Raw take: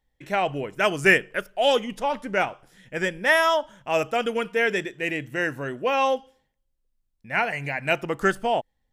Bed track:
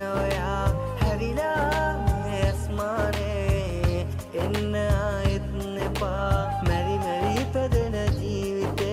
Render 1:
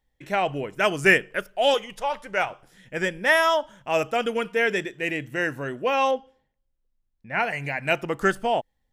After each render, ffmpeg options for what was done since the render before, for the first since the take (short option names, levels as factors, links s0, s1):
-filter_complex "[0:a]asettb=1/sr,asplit=3[s0][s1][s2];[s0]atrim=end=1.744[s3];[s1]atrim=start=1.74:end=2.5,asetpts=PTS-STARTPTS,afade=t=in:d=0.004:c=qsin,afade=t=out:st=0.756:d=0.004:c=qsin,equalizer=f=250:t=o:w=0.97:g=-14[s4];[s2]atrim=start=2.496[s5];[s3][s4]acrossfade=d=0.004:c1=hsin:c2=qsin[s6];[s6][s5]acrossfade=d=0.004:c1=qsin:c2=hsin,asettb=1/sr,asplit=3[s7][s8][s9];[s7]atrim=end=6.114[s10];[s8]atrim=start=6.11:end=7.4,asetpts=PTS-STARTPTS,afade=t=in:d=0.004:c=qsin,afade=t=out:st=1.286:d=0.004:c=qsin,aemphasis=mode=reproduction:type=75kf[s11];[s9]atrim=start=7.396[s12];[s10][s11]acrossfade=d=0.004:c1=hsin:c2=qsin[s13];[s13][s12]acrossfade=d=0.004:c1=qsin:c2=hsin"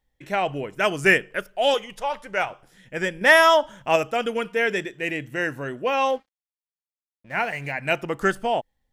-filter_complex "[0:a]asettb=1/sr,asplit=3[s0][s1][s2];[s0]atrim=end=3.214[s3];[s1]atrim=start=3.21:end=3.96,asetpts=PTS-STARTPTS,afade=t=in:d=0.004:c=qsin,afade=t=out:st=0.746:d=0.004:c=qsin,acontrast=34[s4];[s2]atrim=start=3.956[s5];[s3][s4]acrossfade=d=0.004:c1=hsin:c2=qsin[s6];[s6][s5]acrossfade=d=0.004:c1=qsin:c2=hsin,asettb=1/sr,asplit=3[s7][s8][s9];[s7]atrim=end=6.084[s10];[s8]atrim=start=6.08:end=7.72,asetpts=PTS-STARTPTS,afade=t=in:d=0.004:c=qsin,afade=t=out:st=1.636:d=0.004:c=qsin,aeval=exprs='sgn(val(0))*max(abs(val(0))-0.00355,0)':c=same[s11];[s9]atrim=start=7.716[s12];[s10][s11]acrossfade=d=0.004:c1=hsin:c2=qsin[s13];[s13][s12]acrossfade=d=0.004:c1=qsin:c2=hsin"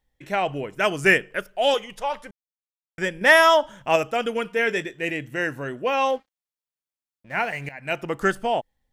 -filter_complex "[0:a]asettb=1/sr,asplit=3[s0][s1][s2];[s0]atrim=end=4.574[s3];[s1]atrim=start=4.57:end=5.1,asetpts=PTS-STARTPTS,afade=t=in:d=0.004:c=qsin,afade=t=out:st=0.526:d=0.004:c=qsin,asplit=2[s4][s5];[s5]adelay=18,volume=0.251[s6];[s4][s6]amix=inputs=2:normalize=0,atrim=end_sample=23373[s7];[s2]atrim=start=5.096[s8];[s3][s7]acrossfade=d=0.004:c1=hsin:c2=qsin[s9];[s9][s8]acrossfade=d=0.004:c1=qsin:c2=hsin,asplit=4[s10][s11][s12][s13];[s10]atrim=end=2.31,asetpts=PTS-STARTPTS,afade=t=out:st=2.306:d=0.004:c=hsin[s14];[s11]atrim=start=2.31:end=2.98,asetpts=PTS-STARTPTS,volume=0[s15];[s12]atrim=start=2.98:end=7.69,asetpts=PTS-STARTPTS,afade=t=in:d=0.004:c=hsin,afade=t=out:st=4.706:d=0.004:c=hsin:silence=0.177828[s16];[s13]atrim=start=7.69,asetpts=PTS-STARTPTS,afade=t=in:d=0.4:silence=0.177828[s17];[s14][s15][s16][s17]concat=n=4:v=0:a=1"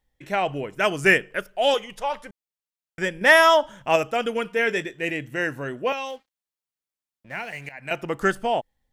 -filter_complex "[0:a]asettb=1/sr,asplit=3[s0][s1][s2];[s0]atrim=end=5.924[s3];[s1]atrim=start=5.92:end=7.91,asetpts=PTS-STARTPTS,afade=t=in:d=0.004:c=qsin,afade=t=out:st=1.986:d=0.004:c=qsin,acrossover=split=530|2300[s4][s5][s6];[s4]acompressor=threshold=0.00891:ratio=4[s7];[s5]acompressor=threshold=0.0158:ratio=4[s8];[s6]acompressor=threshold=0.02:ratio=4[s9];[s7][s8][s9]amix=inputs=3:normalize=0[s10];[s2]atrim=start=7.906[s11];[s3][s10]acrossfade=d=0.004:c1=hsin:c2=qsin[s12];[s12][s11]acrossfade=d=0.004:c1=qsin:c2=hsin"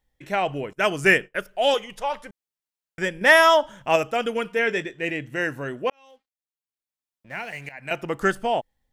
-filter_complex "[0:a]asettb=1/sr,asplit=3[s0][s1][s2];[s0]atrim=end=0.734[s3];[s1]atrim=start=0.73:end=1.45,asetpts=PTS-STARTPTS,afade=t=in:d=0.004:c=qsin,afade=t=out:st=0.716:d=0.004:c=qsin,agate=range=0.0224:threshold=0.0112:ratio=3:release=100:detection=peak[s4];[s2]atrim=start=1.446[s5];[s3][s4]acrossfade=d=0.004:c1=hsin:c2=qsin[s6];[s6][s5]acrossfade=d=0.004:c1=qsin:c2=hsin,asettb=1/sr,asplit=3[s7][s8][s9];[s7]atrim=end=4.594[s10];[s8]atrim=start=4.59:end=5.33,asetpts=PTS-STARTPTS,afade=t=in:d=0.004:c=qsin,afade=t=out:st=0.736:d=0.004:c=qsin,highshelf=f=10000:g=-11.5[s11];[s9]atrim=start=5.326[s12];[s10][s11]acrossfade=d=0.004:c1=hsin:c2=qsin[s13];[s13][s12]acrossfade=d=0.004:c1=qsin:c2=hsin,asplit=2[s14][s15];[s14]atrim=end=5.9,asetpts=PTS-STARTPTS,afade=t=out:st=5.896:d=0.004:c=hsin[s16];[s15]atrim=start=5.9,asetpts=PTS-STARTPTS,afade=t=in:d=1.58[s17];[s16][s17]concat=n=2:v=0:a=1"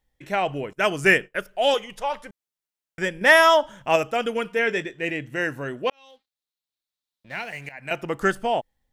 -filter_complex "[0:a]asettb=1/sr,asplit=3[s0][s1][s2];[s0]atrim=end=5.834[s3];[s1]atrim=start=5.83:end=7.44,asetpts=PTS-STARTPTS,afade=t=in:d=0.004:c=qsin,afade=t=out:st=1.606:d=0.004:c=qsin,equalizer=f=3900:w=2.4:g=11.5[s4];[s2]atrim=start=7.436[s5];[s3][s4]acrossfade=d=0.004:c1=hsin:c2=qsin[s6];[s6][s5]acrossfade=d=0.004:c1=qsin:c2=hsin"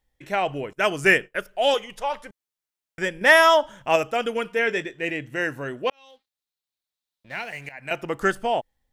-af "equalizer=f=180:w=1.5:g=-2.5"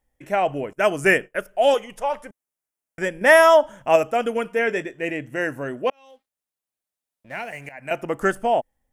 -af "equalizer=f=250:t=o:w=0.67:g=4,equalizer=f=630:t=o:w=0.67:g=5,equalizer=f=4000:t=o:w=0.67:g=-10,equalizer=f=10000:t=o:w=0.67:g=4"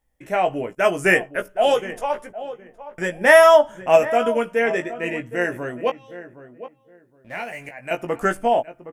-filter_complex "[0:a]asplit=2[s0][s1];[s1]adelay=17,volume=0.501[s2];[s0][s2]amix=inputs=2:normalize=0,asplit=2[s3][s4];[s4]adelay=766,lowpass=f=1200:p=1,volume=0.224,asplit=2[s5][s6];[s6]adelay=766,lowpass=f=1200:p=1,volume=0.22,asplit=2[s7][s8];[s8]adelay=766,lowpass=f=1200:p=1,volume=0.22[s9];[s3][s5][s7][s9]amix=inputs=4:normalize=0"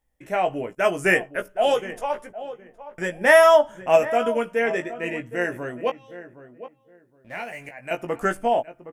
-af "volume=0.75"